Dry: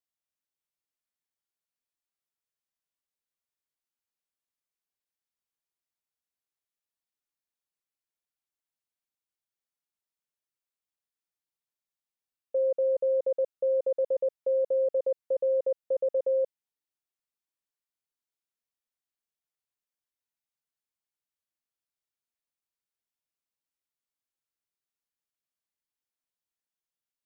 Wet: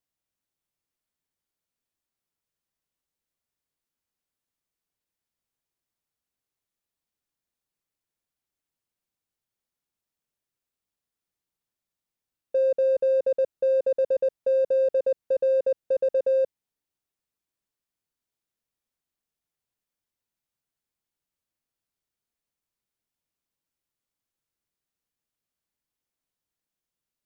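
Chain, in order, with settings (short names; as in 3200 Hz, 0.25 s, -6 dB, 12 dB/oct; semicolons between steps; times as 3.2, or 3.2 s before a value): low shelf 430 Hz +8.5 dB; in parallel at -9 dB: soft clip -35.5 dBFS, distortion -8 dB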